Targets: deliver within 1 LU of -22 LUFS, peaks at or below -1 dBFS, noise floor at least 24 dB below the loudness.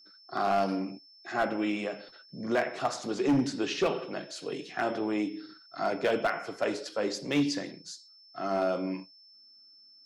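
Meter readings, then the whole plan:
clipped samples 0.8%; clipping level -20.0 dBFS; steady tone 5.3 kHz; tone level -54 dBFS; loudness -31.0 LUFS; peak level -20.0 dBFS; loudness target -22.0 LUFS
-> clip repair -20 dBFS; band-stop 5.3 kHz, Q 30; trim +9 dB

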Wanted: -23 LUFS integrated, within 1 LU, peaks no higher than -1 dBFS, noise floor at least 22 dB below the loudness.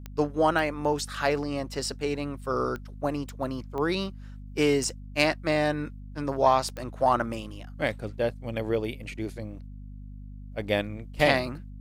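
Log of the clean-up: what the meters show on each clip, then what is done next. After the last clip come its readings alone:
clicks found 7; hum 50 Hz; highest harmonic 250 Hz; hum level -39 dBFS; loudness -28.0 LUFS; peak level -7.0 dBFS; loudness target -23.0 LUFS
-> de-click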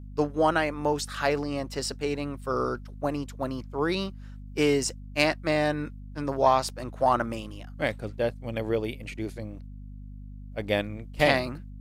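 clicks found 0; hum 50 Hz; highest harmonic 250 Hz; hum level -39 dBFS
-> de-hum 50 Hz, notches 5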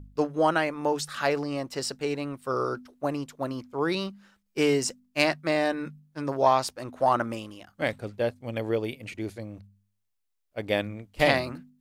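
hum not found; loudness -28.0 LUFS; peak level -6.5 dBFS; loudness target -23.0 LUFS
-> trim +5 dB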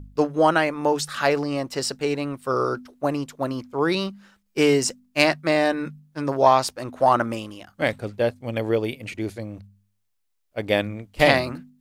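loudness -23.0 LUFS; peak level -1.5 dBFS; noise floor -71 dBFS

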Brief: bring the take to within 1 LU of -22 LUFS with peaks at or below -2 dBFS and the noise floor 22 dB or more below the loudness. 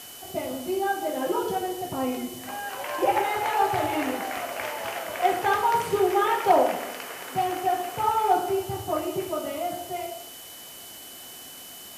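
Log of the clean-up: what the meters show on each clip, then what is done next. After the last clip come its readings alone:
steady tone 3 kHz; tone level -47 dBFS; noise floor -43 dBFS; noise floor target -49 dBFS; loudness -26.5 LUFS; peak level -10.0 dBFS; loudness target -22.0 LUFS
-> band-stop 3 kHz, Q 30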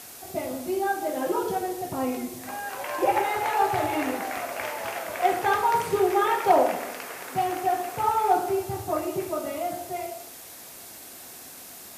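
steady tone not found; noise floor -44 dBFS; noise floor target -49 dBFS
-> noise reduction 6 dB, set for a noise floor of -44 dBFS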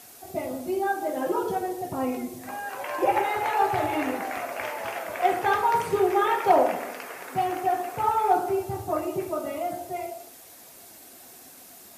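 noise floor -48 dBFS; noise floor target -49 dBFS
-> noise reduction 6 dB, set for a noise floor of -48 dBFS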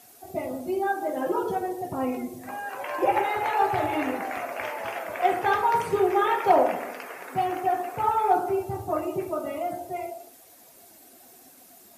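noise floor -52 dBFS; loudness -26.5 LUFS; peak level -10.0 dBFS; loudness target -22.0 LUFS
-> trim +4.5 dB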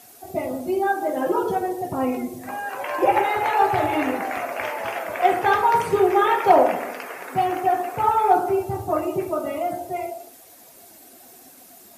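loudness -22.0 LUFS; peak level -5.5 dBFS; noise floor -48 dBFS

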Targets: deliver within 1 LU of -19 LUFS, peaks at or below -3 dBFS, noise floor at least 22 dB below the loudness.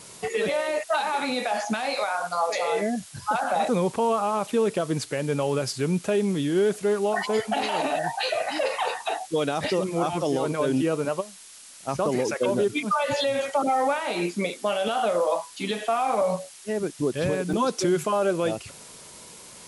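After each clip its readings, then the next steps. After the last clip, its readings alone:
dropouts 1; longest dropout 4.5 ms; noise floor -46 dBFS; noise floor target -48 dBFS; loudness -25.5 LUFS; peak level -13.0 dBFS; loudness target -19.0 LUFS
-> interpolate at 17.53 s, 4.5 ms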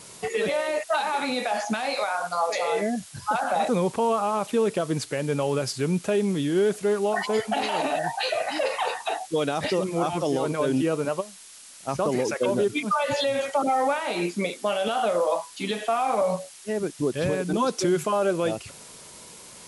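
dropouts 0; noise floor -46 dBFS; noise floor target -48 dBFS
-> noise print and reduce 6 dB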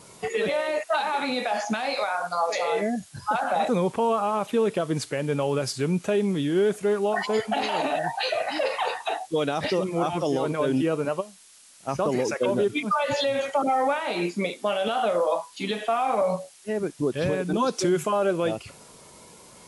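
noise floor -51 dBFS; loudness -26.0 LUFS; peak level -13.0 dBFS; loudness target -19.0 LUFS
-> trim +7 dB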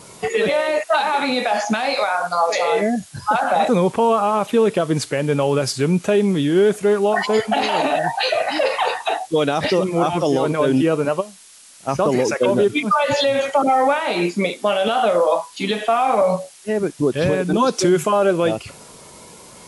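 loudness -19.0 LUFS; peak level -6.0 dBFS; noise floor -44 dBFS

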